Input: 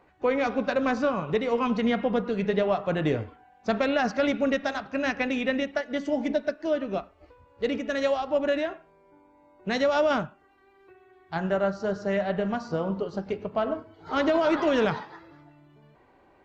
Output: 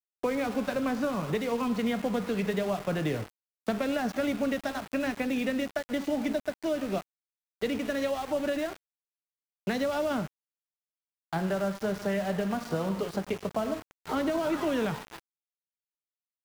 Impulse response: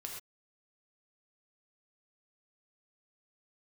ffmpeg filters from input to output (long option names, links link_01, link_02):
-filter_complex "[0:a]agate=range=-33dB:threshold=-46dB:ratio=3:detection=peak,acrossover=split=110|220|700[link_01][link_02][link_03][link_04];[link_01]acompressor=threshold=-57dB:ratio=4[link_05];[link_02]acompressor=threshold=-38dB:ratio=4[link_06];[link_03]acompressor=threshold=-38dB:ratio=4[link_07];[link_04]acompressor=threshold=-41dB:ratio=4[link_08];[link_05][link_06][link_07][link_08]amix=inputs=4:normalize=0,aeval=exprs='val(0)*gte(abs(val(0)),0.00794)':channel_layout=same,volume=4.5dB"